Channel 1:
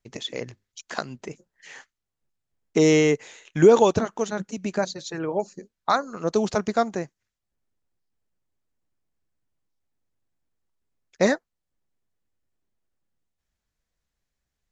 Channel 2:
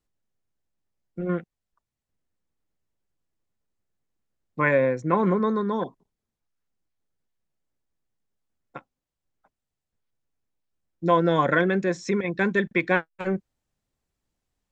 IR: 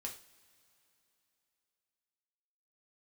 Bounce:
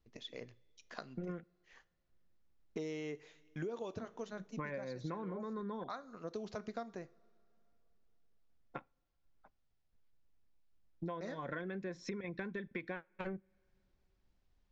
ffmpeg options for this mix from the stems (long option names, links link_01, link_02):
-filter_complex "[0:a]agate=range=-33dB:threshold=-39dB:ratio=3:detection=peak,bandreject=frequency=860:width=13,volume=-17.5dB,asplit=3[link_01][link_02][link_03];[link_02]volume=-8.5dB[link_04];[1:a]lowshelf=frequency=68:gain=11.5,acompressor=threshold=-45dB:ratio=1.5,volume=-1dB,asplit=2[link_05][link_06];[link_06]volume=-21dB[link_07];[link_03]apad=whole_len=648858[link_08];[link_05][link_08]sidechaincompress=threshold=-42dB:ratio=8:attack=16:release=429[link_09];[2:a]atrim=start_sample=2205[link_10];[link_04][link_07]amix=inputs=2:normalize=0[link_11];[link_11][link_10]afir=irnorm=-1:irlink=0[link_12];[link_01][link_09][link_12]amix=inputs=3:normalize=0,lowpass=frequency=5600:width=0.5412,lowpass=frequency=5600:width=1.3066,acompressor=threshold=-38dB:ratio=10"